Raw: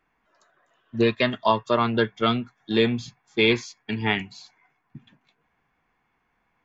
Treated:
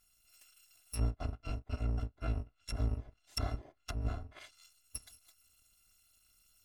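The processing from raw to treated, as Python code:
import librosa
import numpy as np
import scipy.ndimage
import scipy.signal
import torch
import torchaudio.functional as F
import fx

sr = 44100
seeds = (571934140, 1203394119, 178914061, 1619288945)

p1 = fx.bit_reversed(x, sr, seeds[0], block=256)
p2 = fx.low_shelf(p1, sr, hz=190.0, db=6.5)
p3 = fx.rider(p2, sr, range_db=3, speed_s=2.0)
p4 = p2 + (p3 * librosa.db_to_amplitude(-2.0))
p5 = fx.high_shelf(p4, sr, hz=2700.0, db=6.0)
p6 = fx.env_lowpass_down(p5, sr, base_hz=580.0, full_db=-14.0)
y = p6 * librosa.db_to_amplitude(-7.5)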